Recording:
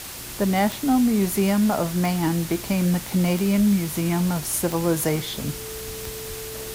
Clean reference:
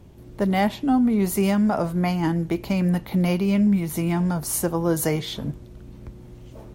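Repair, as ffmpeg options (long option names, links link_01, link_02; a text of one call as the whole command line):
ffmpeg -i in.wav -filter_complex "[0:a]adeclick=threshold=4,bandreject=frequency=440:width=30,asplit=3[link_01][link_02][link_03];[link_01]afade=type=out:start_time=3.57:duration=0.02[link_04];[link_02]highpass=frequency=140:width=0.5412,highpass=frequency=140:width=1.3066,afade=type=in:start_time=3.57:duration=0.02,afade=type=out:start_time=3.69:duration=0.02[link_05];[link_03]afade=type=in:start_time=3.69:duration=0.02[link_06];[link_04][link_05][link_06]amix=inputs=3:normalize=0,asplit=3[link_07][link_08][link_09];[link_07]afade=type=out:start_time=5.86:duration=0.02[link_10];[link_08]highpass=frequency=140:width=0.5412,highpass=frequency=140:width=1.3066,afade=type=in:start_time=5.86:duration=0.02,afade=type=out:start_time=5.98:duration=0.02[link_11];[link_09]afade=type=in:start_time=5.98:duration=0.02[link_12];[link_10][link_11][link_12]amix=inputs=3:normalize=0,asplit=3[link_13][link_14][link_15];[link_13]afade=type=out:start_time=6.28:duration=0.02[link_16];[link_14]highpass=frequency=140:width=0.5412,highpass=frequency=140:width=1.3066,afade=type=in:start_time=6.28:duration=0.02,afade=type=out:start_time=6.4:duration=0.02[link_17];[link_15]afade=type=in:start_time=6.4:duration=0.02[link_18];[link_16][link_17][link_18]amix=inputs=3:normalize=0,afwtdn=0.018" out.wav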